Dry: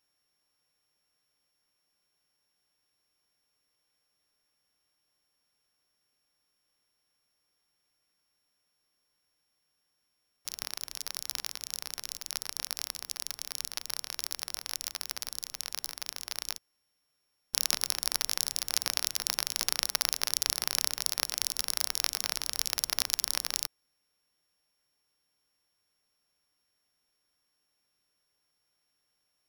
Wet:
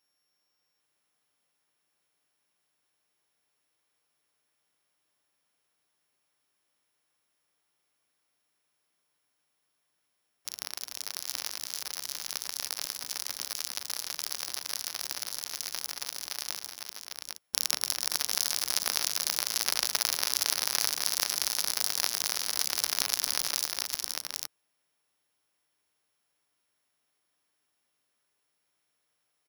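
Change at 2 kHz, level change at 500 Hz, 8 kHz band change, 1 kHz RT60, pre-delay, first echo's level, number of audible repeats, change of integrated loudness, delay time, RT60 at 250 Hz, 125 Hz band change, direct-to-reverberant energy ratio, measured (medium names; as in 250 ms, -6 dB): +2.0 dB, +1.5 dB, +2.0 dB, no reverb, no reverb, -19.5 dB, 5, +1.5 dB, 41 ms, no reverb, no reading, no reverb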